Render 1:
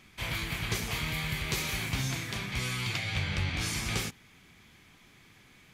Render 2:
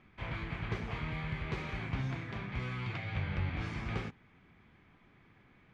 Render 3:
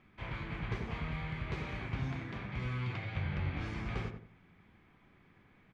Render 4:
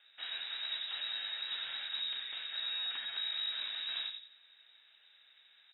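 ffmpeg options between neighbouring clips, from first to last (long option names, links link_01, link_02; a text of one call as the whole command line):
ffmpeg -i in.wav -af "lowpass=1700,volume=-2.5dB" out.wav
ffmpeg -i in.wav -filter_complex "[0:a]asplit=2[link_01][link_02];[link_02]adelay=88,lowpass=frequency=1100:poles=1,volume=-4dB,asplit=2[link_03][link_04];[link_04]adelay=88,lowpass=frequency=1100:poles=1,volume=0.35,asplit=2[link_05][link_06];[link_06]adelay=88,lowpass=frequency=1100:poles=1,volume=0.35,asplit=2[link_07][link_08];[link_08]adelay=88,lowpass=frequency=1100:poles=1,volume=0.35[link_09];[link_01][link_03][link_05][link_07][link_09]amix=inputs=5:normalize=0,volume=-2dB" out.wav
ffmpeg -i in.wav -af "asoftclip=type=tanh:threshold=-31.5dB,lowpass=frequency=3300:width_type=q:width=0.5098,lowpass=frequency=3300:width_type=q:width=0.6013,lowpass=frequency=3300:width_type=q:width=0.9,lowpass=frequency=3300:width_type=q:width=2.563,afreqshift=-3900" out.wav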